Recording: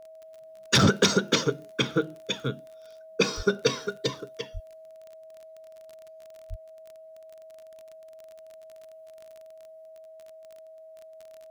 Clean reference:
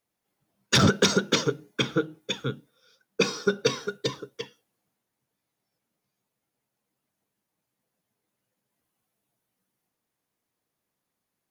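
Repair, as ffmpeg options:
-filter_complex "[0:a]adeclick=t=4,bandreject=f=640:w=30,asplit=3[a][b][c];[a]afade=t=out:st=3.36:d=0.02[d];[b]highpass=f=140:w=0.5412,highpass=f=140:w=1.3066,afade=t=in:st=3.36:d=0.02,afade=t=out:st=3.48:d=0.02[e];[c]afade=t=in:st=3.48:d=0.02[f];[d][e][f]amix=inputs=3:normalize=0,asplit=3[g][h][i];[g]afade=t=out:st=4.53:d=0.02[j];[h]highpass=f=140:w=0.5412,highpass=f=140:w=1.3066,afade=t=in:st=4.53:d=0.02,afade=t=out:st=4.65:d=0.02[k];[i]afade=t=in:st=4.65:d=0.02[l];[j][k][l]amix=inputs=3:normalize=0,asplit=3[m][n][o];[m]afade=t=out:st=6.49:d=0.02[p];[n]highpass=f=140:w=0.5412,highpass=f=140:w=1.3066,afade=t=in:st=6.49:d=0.02,afade=t=out:st=6.61:d=0.02[q];[o]afade=t=in:st=6.61:d=0.02[r];[p][q][r]amix=inputs=3:normalize=0"

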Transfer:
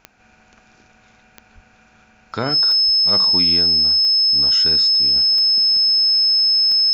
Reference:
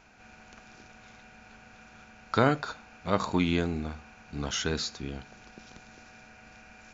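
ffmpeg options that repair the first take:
-filter_complex "[0:a]adeclick=t=4,bandreject=f=5.2k:w=30,asplit=3[a][b][c];[a]afade=t=out:st=1.54:d=0.02[d];[b]highpass=f=140:w=0.5412,highpass=f=140:w=1.3066,afade=t=in:st=1.54:d=0.02,afade=t=out:st=1.66:d=0.02[e];[c]afade=t=in:st=1.66:d=0.02[f];[d][e][f]amix=inputs=3:normalize=0,asplit=3[g][h][i];[g]afade=t=out:st=2.85:d=0.02[j];[h]highpass=f=140:w=0.5412,highpass=f=140:w=1.3066,afade=t=in:st=2.85:d=0.02,afade=t=out:st=2.97:d=0.02[k];[i]afade=t=in:st=2.97:d=0.02[l];[j][k][l]amix=inputs=3:normalize=0,asetnsamples=n=441:p=0,asendcmd='5.16 volume volume -4dB',volume=0dB"

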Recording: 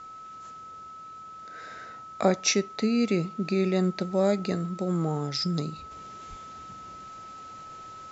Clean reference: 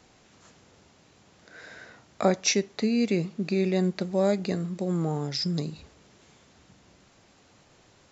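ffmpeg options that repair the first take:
-filter_complex "[0:a]bandreject=f=1.3k:w=30,asplit=3[a][b][c];[a]afade=t=out:st=6.29:d=0.02[d];[b]highpass=f=140:w=0.5412,highpass=f=140:w=1.3066,afade=t=in:st=6.29:d=0.02,afade=t=out:st=6.41:d=0.02[e];[c]afade=t=in:st=6.41:d=0.02[f];[d][e][f]amix=inputs=3:normalize=0,asetnsamples=n=441:p=0,asendcmd='5.91 volume volume -6dB',volume=0dB"

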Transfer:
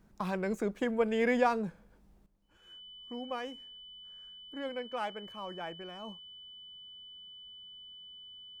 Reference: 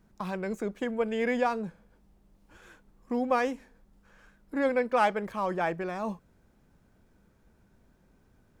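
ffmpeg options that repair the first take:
-af "bandreject=f=3k:w=30,asetnsamples=n=441:p=0,asendcmd='2.26 volume volume 12dB',volume=0dB"

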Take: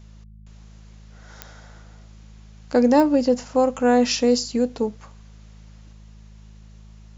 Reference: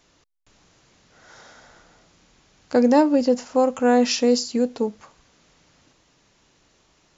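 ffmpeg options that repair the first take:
-af "adeclick=t=4,bandreject=f=53:t=h:w=4,bandreject=f=106:t=h:w=4,bandreject=f=159:t=h:w=4,bandreject=f=212:t=h:w=4"

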